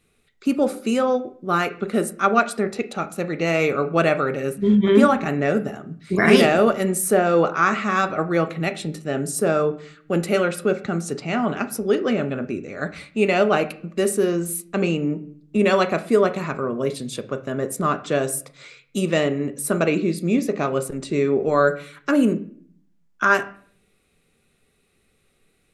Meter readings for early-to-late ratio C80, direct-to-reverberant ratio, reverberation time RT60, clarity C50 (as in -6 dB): 19.5 dB, 9.0 dB, 0.55 s, 15.5 dB